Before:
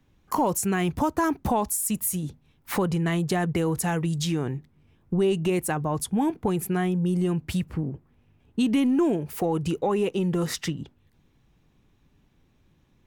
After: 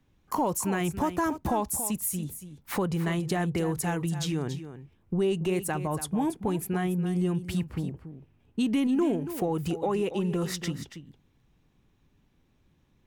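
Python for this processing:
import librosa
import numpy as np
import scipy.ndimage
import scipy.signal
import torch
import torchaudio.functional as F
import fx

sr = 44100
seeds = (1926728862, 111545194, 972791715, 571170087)

y = x + 10.0 ** (-11.5 / 20.0) * np.pad(x, (int(282 * sr / 1000.0), 0))[:len(x)]
y = y * 10.0 ** (-3.5 / 20.0)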